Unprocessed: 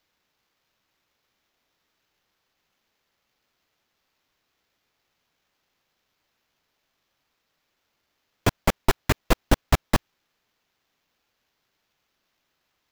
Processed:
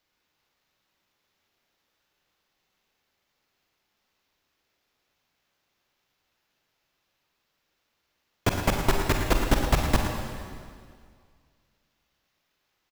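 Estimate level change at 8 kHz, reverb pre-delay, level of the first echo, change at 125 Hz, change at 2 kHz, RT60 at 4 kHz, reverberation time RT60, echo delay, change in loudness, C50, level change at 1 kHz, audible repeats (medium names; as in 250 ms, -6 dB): -0.5 dB, 33 ms, -11.0 dB, -0.5 dB, -0.5 dB, 1.9 s, 2.1 s, 48 ms, -1.0 dB, 2.5 dB, -0.5 dB, 2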